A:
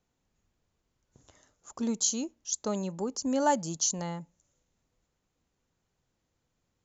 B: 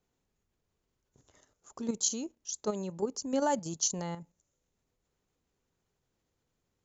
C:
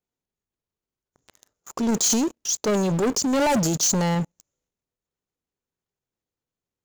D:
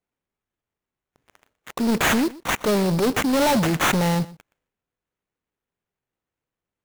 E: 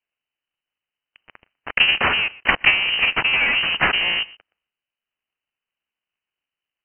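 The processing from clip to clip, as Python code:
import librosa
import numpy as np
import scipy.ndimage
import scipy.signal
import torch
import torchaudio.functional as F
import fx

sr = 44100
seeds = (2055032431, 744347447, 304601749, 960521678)

y1 = fx.peak_eq(x, sr, hz=410.0, db=5.5, octaves=0.31)
y1 = fx.level_steps(y1, sr, step_db=9)
y2 = fx.transient(y1, sr, attack_db=-2, sustain_db=8)
y2 = fx.low_shelf(y2, sr, hz=79.0, db=-5.5)
y2 = fx.leveller(y2, sr, passes=5)
y3 = fx.sample_hold(y2, sr, seeds[0], rate_hz=4800.0, jitter_pct=20)
y3 = y3 + 10.0 ** (-20.0 / 20.0) * np.pad(y3, (int(121 * sr / 1000.0), 0))[:len(y3)]
y3 = F.gain(torch.from_numpy(y3), 1.5).numpy()
y4 = fx.cycle_switch(y3, sr, every=3, mode='inverted')
y4 = fx.transient(y4, sr, attack_db=12, sustain_db=-1)
y4 = fx.freq_invert(y4, sr, carrier_hz=3000)
y4 = F.gain(torch.from_numpy(y4), -1.0).numpy()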